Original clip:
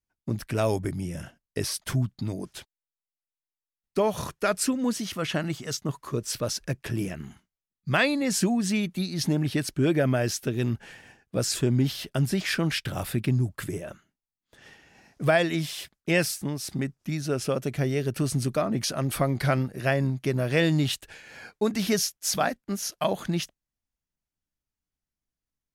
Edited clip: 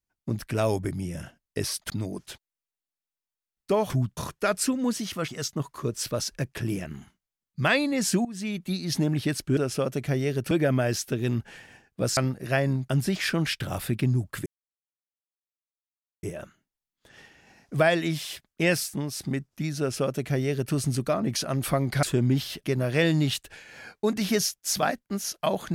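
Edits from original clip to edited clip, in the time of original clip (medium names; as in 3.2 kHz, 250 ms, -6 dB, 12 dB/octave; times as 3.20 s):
1.90–2.17 s: move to 4.17 s
5.28–5.57 s: delete
8.54–9.03 s: fade in, from -17 dB
11.52–12.13 s: swap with 19.51–20.22 s
13.71 s: insert silence 1.77 s
17.27–18.21 s: copy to 9.86 s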